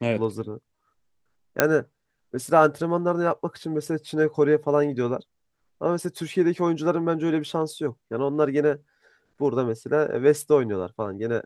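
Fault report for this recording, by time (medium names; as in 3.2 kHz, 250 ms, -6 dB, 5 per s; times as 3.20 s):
1.60 s: pop -2 dBFS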